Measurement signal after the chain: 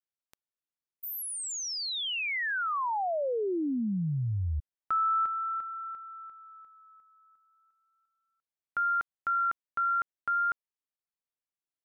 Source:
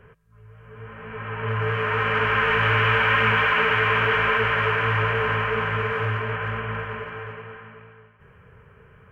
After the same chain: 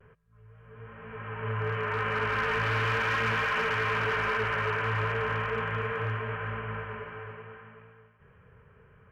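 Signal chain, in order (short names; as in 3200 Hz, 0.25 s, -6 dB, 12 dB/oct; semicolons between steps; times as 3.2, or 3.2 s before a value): overloaded stage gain 16.5 dB; high shelf 3700 Hz -7.5 dB; vibrato 0.39 Hz 20 cents; gain -6 dB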